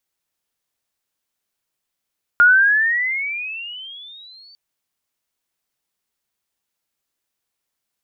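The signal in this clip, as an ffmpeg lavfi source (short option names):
-f lavfi -i "aevalsrc='pow(10,(-7-36.5*t/2.15)/20)*sin(2*PI*1410*2.15/(20.5*log(2)/12)*(exp(20.5*log(2)/12*t/2.15)-1))':d=2.15:s=44100"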